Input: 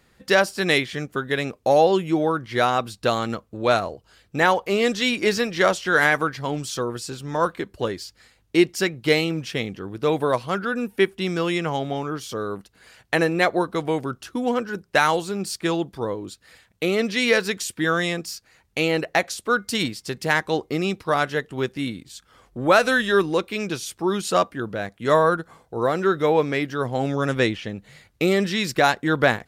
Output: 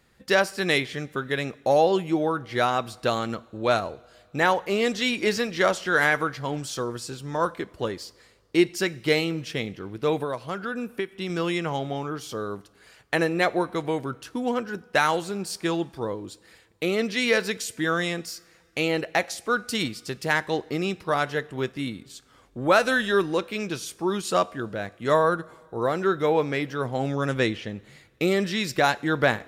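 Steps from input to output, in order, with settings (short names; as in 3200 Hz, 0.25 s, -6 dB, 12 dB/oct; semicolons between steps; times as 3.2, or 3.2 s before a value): two-slope reverb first 0.56 s, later 2.6 s, from -16 dB, DRR 17.5 dB; 10.21–11.3 compressor 6:1, threshold -23 dBFS, peak gain reduction 10 dB; gain -3 dB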